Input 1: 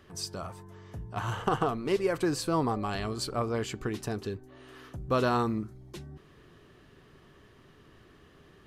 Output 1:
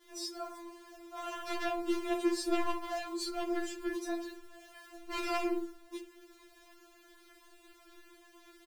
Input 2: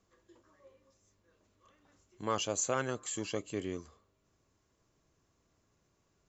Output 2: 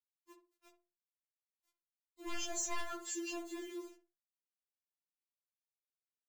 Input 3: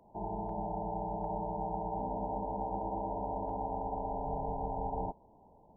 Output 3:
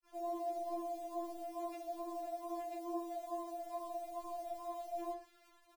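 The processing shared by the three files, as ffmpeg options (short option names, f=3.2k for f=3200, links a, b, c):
-filter_complex "[0:a]adynamicequalizer=threshold=0.00891:dfrequency=870:dqfactor=1.3:tfrequency=870:tqfactor=1.3:attack=5:release=100:ratio=0.375:range=1.5:mode=boostabove:tftype=bell,acrusher=bits=8:mix=0:aa=0.000001,aeval=exprs='0.0596*(abs(mod(val(0)/0.0596+3,4)-2)-1)':c=same,flanger=delay=19:depth=7.7:speed=2.3,asplit=2[a][b];[b]adelay=62,lowpass=f=810:p=1,volume=-5dB,asplit=2[c][d];[d]adelay=62,lowpass=f=810:p=1,volume=0.35,asplit=2[e][f];[f]adelay=62,lowpass=f=810:p=1,volume=0.35,asplit=2[g][h];[h]adelay=62,lowpass=f=810:p=1,volume=0.35[i];[c][e][g][i]amix=inputs=4:normalize=0[j];[a][j]amix=inputs=2:normalize=0,afftfilt=real='re*4*eq(mod(b,16),0)':imag='im*4*eq(mod(b,16),0)':win_size=2048:overlap=0.75,volume=1dB"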